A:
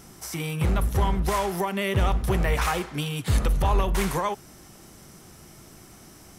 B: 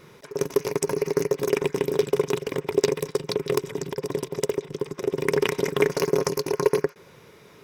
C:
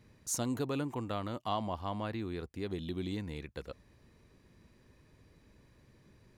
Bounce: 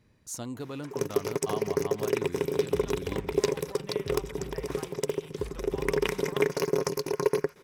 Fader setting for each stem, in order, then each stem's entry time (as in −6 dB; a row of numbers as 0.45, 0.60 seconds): −19.5, −4.5, −3.0 decibels; 2.10, 0.60, 0.00 seconds